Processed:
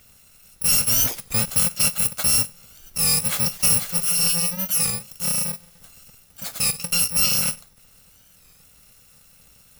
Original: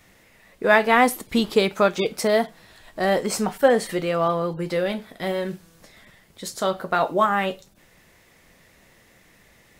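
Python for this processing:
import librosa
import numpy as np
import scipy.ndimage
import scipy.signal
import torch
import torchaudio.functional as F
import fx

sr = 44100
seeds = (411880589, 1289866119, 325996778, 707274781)

y = fx.bit_reversed(x, sr, seeds[0], block=128)
y = np.clip(10.0 ** (17.5 / 20.0) * y, -1.0, 1.0) / 10.0 ** (17.5 / 20.0)
y = fx.record_warp(y, sr, rpm=33.33, depth_cents=160.0)
y = F.gain(torch.from_numpy(y), 2.5).numpy()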